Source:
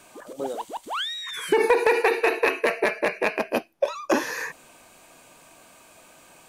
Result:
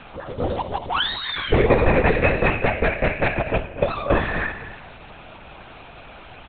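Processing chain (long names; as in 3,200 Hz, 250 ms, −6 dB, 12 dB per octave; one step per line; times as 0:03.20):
mu-law and A-law mismatch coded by mu
brickwall limiter −13.5 dBFS, peak gain reduction 3 dB
slap from a distant wall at 41 metres, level −13 dB
convolution reverb RT60 1.9 s, pre-delay 65 ms, DRR 13 dB
linear-prediction vocoder at 8 kHz whisper
level +5 dB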